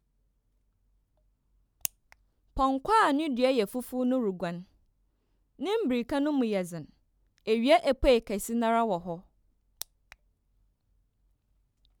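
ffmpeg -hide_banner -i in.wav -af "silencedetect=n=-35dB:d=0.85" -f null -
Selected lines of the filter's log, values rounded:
silence_start: 0.00
silence_end: 1.85 | silence_duration: 1.85
silence_start: 4.59
silence_end: 5.61 | silence_duration: 1.02
silence_start: 10.12
silence_end: 12.00 | silence_duration: 1.88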